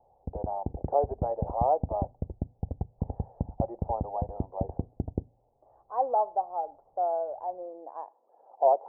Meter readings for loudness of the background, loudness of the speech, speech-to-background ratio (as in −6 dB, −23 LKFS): −37.0 LKFS, −31.5 LKFS, 5.5 dB